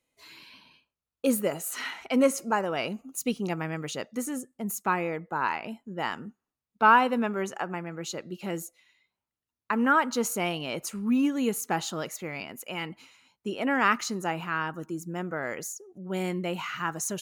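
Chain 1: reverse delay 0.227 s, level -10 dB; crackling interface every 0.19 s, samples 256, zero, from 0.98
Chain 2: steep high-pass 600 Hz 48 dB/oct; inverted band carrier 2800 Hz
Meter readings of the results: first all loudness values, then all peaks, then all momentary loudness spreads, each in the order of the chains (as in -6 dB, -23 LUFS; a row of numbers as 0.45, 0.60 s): -28.5, -29.5 LUFS; -8.0, -8.0 dBFS; 12, 20 LU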